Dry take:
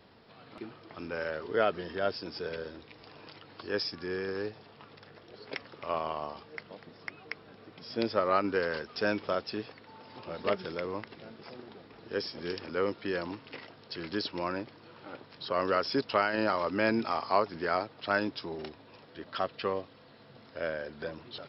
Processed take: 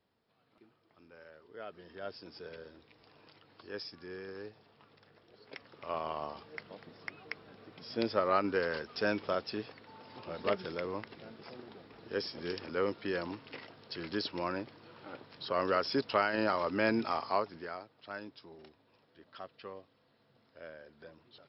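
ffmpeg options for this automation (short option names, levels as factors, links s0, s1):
-af "volume=0.794,afade=t=in:st=1.57:d=0.65:silence=0.316228,afade=t=in:st=5.52:d=0.7:silence=0.398107,afade=t=out:st=17.13:d=0.64:silence=0.237137"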